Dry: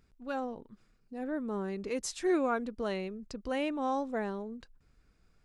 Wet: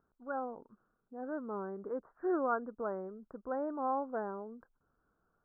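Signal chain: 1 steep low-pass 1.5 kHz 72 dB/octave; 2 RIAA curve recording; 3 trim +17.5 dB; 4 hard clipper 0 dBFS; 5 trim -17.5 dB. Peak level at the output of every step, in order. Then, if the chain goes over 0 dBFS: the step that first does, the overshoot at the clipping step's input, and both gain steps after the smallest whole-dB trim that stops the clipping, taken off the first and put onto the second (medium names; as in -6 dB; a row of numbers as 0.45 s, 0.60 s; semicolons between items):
-20.5 dBFS, -21.0 dBFS, -3.5 dBFS, -3.5 dBFS, -21.0 dBFS; nothing clips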